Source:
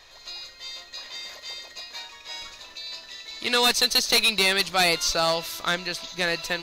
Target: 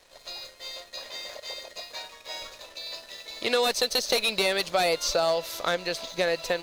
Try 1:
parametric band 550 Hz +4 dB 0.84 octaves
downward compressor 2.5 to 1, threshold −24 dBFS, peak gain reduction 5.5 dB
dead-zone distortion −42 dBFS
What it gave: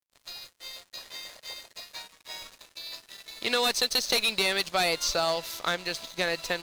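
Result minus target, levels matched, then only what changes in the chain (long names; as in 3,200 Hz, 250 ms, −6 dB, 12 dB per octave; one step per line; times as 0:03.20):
500 Hz band −6.0 dB; dead-zone distortion: distortion +8 dB
change: parametric band 550 Hz +12 dB 0.84 octaves
change: dead-zone distortion −49.5 dBFS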